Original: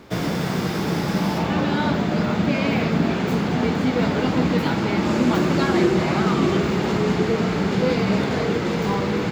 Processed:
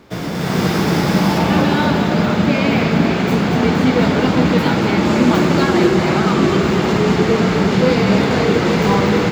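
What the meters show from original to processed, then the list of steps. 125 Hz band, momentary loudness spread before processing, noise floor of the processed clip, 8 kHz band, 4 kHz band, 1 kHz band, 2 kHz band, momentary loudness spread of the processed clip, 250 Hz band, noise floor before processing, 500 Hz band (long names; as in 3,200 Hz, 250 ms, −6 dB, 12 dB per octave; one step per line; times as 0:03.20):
+6.0 dB, 3 LU, −20 dBFS, +7.0 dB, +7.0 dB, +6.5 dB, +6.5 dB, 2 LU, +6.0 dB, −24 dBFS, +6.0 dB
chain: automatic gain control
on a send: feedback echo with a high-pass in the loop 236 ms, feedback 68%, level −8.5 dB
on the sum: level −1 dB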